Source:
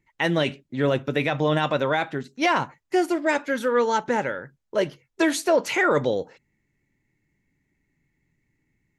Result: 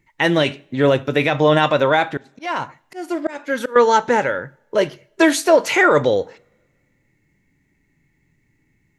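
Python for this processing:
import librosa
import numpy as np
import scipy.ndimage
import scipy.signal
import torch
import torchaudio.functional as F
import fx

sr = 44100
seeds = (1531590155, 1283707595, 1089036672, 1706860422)

y = fx.dynamic_eq(x, sr, hz=180.0, q=1.0, threshold_db=-37.0, ratio=4.0, max_db=-6)
y = fx.hpss(y, sr, part='harmonic', gain_db=4)
y = fx.auto_swell(y, sr, attack_ms=416.0, at=(2.17, 3.76))
y = fx.rev_double_slope(y, sr, seeds[0], early_s=0.54, late_s=1.8, knee_db=-21, drr_db=20.0)
y = y * librosa.db_to_amplitude(5.5)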